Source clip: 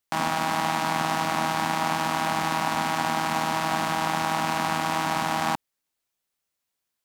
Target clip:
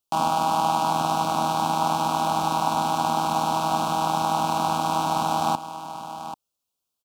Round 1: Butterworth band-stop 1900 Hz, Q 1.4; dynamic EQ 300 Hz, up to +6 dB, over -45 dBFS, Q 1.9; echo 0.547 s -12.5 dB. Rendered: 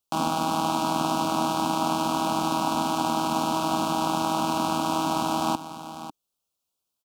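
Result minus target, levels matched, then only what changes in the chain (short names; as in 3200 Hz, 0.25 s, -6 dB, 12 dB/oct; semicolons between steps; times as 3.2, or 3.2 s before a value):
echo 0.24 s early; 250 Hz band +6.0 dB
change: dynamic EQ 840 Hz, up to +6 dB, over -45 dBFS, Q 1.9; change: echo 0.787 s -12.5 dB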